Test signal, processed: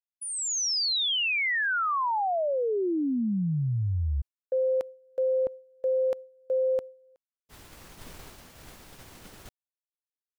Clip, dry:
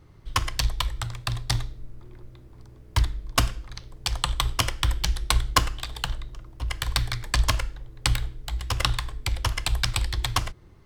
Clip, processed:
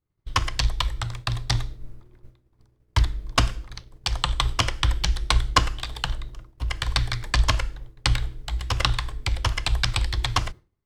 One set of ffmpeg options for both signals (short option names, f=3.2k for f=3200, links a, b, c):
-filter_complex "[0:a]agate=range=-33dB:threshold=-34dB:ratio=3:detection=peak,acrossover=split=7700[a][b];[b]acompressor=threshold=-49dB:ratio=4:attack=1:release=60[c];[a][c]amix=inputs=2:normalize=0,volume=2dB"